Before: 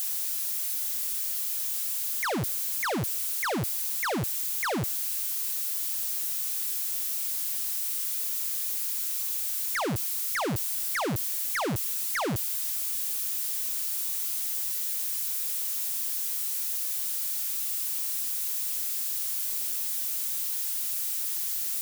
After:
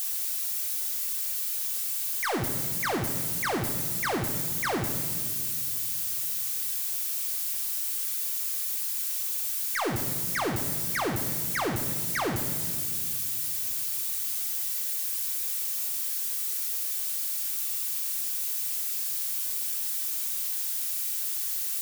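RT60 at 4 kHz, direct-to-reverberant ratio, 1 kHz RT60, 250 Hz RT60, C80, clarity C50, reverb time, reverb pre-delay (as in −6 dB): 1.1 s, 3.0 dB, 1.6 s, 3.2 s, 8.5 dB, 7.5 dB, 1.8 s, 3 ms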